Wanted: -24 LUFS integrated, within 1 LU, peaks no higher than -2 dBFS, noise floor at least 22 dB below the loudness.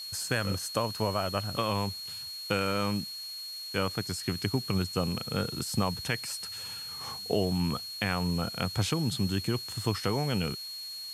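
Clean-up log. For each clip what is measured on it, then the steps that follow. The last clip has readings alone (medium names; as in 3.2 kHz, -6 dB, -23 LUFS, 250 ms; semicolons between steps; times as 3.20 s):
steady tone 4.3 kHz; tone level -38 dBFS; noise floor -41 dBFS; noise floor target -54 dBFS; loudness -31.5 LUFS; peak level -13.0 dBFS; loudness target -24.0 LUFS
-> band-stop 4.3 kHz, Q 30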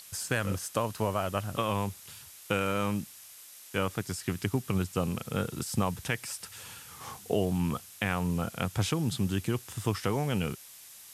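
steady tone not found; noise floor -50 dBFS; noise floor target -54 dBFS
-> noise reduction 6 dB, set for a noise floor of -50 dBFS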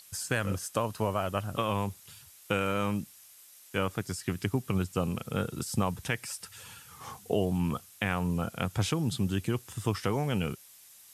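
noise floor -55 dBFS; loudness -32.0 LUFS; peak level -13.5 dBFS; loudness target -24.0 LUFS
-> trim +8 dB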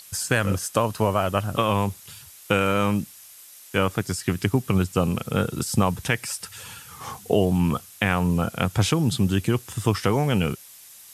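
loudness -24.0 LUFS; peak level -5.5 dBFS; noise floor -47 dBFS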